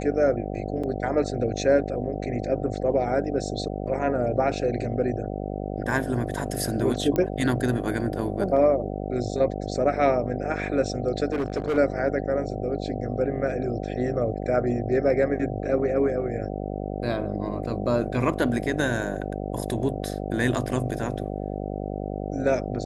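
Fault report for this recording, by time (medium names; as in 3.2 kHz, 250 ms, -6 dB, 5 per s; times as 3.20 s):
buzz 50 Hz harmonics 15 -31 dBFS
0.83–0.84 s: dropout 5.6 ms
7.16 s: pop -13 dBFS
11.32–11.78 s: clipped -21.5 dBFS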